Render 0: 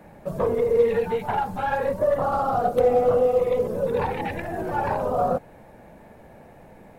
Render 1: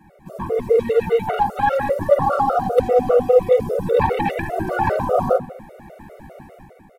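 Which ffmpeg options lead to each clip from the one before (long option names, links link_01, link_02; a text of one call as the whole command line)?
ffmpeg -i in.wav -filter_complex "[0:a]dynaudnorm=framelen=160:gausssize=7:maxgain=10dB,asplit=2[link_01][link_02];[link_02]adelay=78,lowpass=frequency=1500:poles=1,volume=-12dB,asplit=2[link_03][link_04];[link_04]adelay=78,lowpass=frequency=1500:poles=1,volume=0.53,asplit=2[link_05][link_06];[link_06]adelay=78,lowpass=frequency=1500:poles=1,volume=0.53,asplit=2[link_07][link_08];[link_08]adelay=78,lowpass=frequency=1500:poles=1,volume=0.53,asplit=2[link_09][link_10];[link_10]adelay=78,lowpass=frequency=1500:poles=1,volume=0.53,asplit=2[link_11][link_12];[link_12]adelay=78,lowpass=frequency=1500:poles=1,volume=0.53[link_13];[link_01][link_03][link_05][link_07][link_09][link_11][link_13]amix=inputs=7:normalize=0,afftfilt=real='re*gt(sin(2*PI*5*pts/sr)*(1-2*mod(floor(b*sr/1024/380),2)),0)':imag='im*gt(sin(2*PI*5*pts/sr)*(1-2*mod(floor(b*sr/1024/380),2)),0)':win_size=1024:overlap=0.75" out.wav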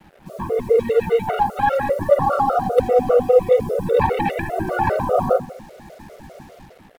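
ffmpeg -i in.wav -af "acrusher=bits=7:mix=0:aa=0.5" out.wav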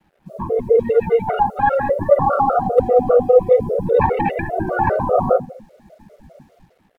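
ffmpeg -i in.wav -af "afftdn=noise_reduction=14:noise_floor=-27,volume=2dB" out.wav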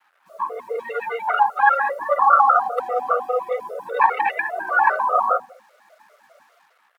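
ffmpeg -i in.wav -af "highpass=frequency=1200:width_type=q:width=2.7,volume=1.5dB" out.wav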